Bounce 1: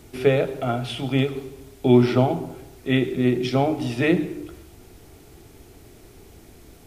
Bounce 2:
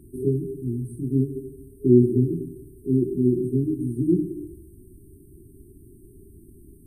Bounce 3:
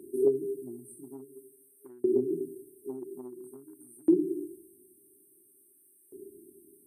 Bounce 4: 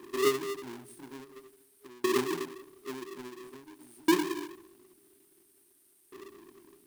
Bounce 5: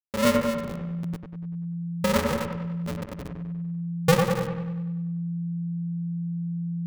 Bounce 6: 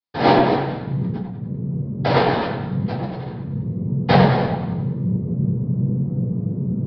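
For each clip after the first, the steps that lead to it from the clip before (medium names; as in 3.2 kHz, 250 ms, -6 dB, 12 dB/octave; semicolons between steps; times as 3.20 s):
FFT band-reject 410–8200 Hz; treble shelf 10 kHz -6.5 dB
compression 6:1, threshold -22 dBFS, peak gain reduction 12 dB; LFO high-pass saw up 0.49 Hz 400–1800 Hz; trim +2 dB
square wave that keeps the level; trim -5 dB
send-on-delta sampling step -35 dBFS; feedback echo behind a low-pass 97 ms, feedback 54%, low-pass 2.1 kHz, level -4 dB; ring modulator 170 Hz; trim +7.5 dB
noise-vocoded speech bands 6; simulated room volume 240 m³, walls furnished, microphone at 3.9 m; resampled via 11.025 kHz; trim -1.5 dB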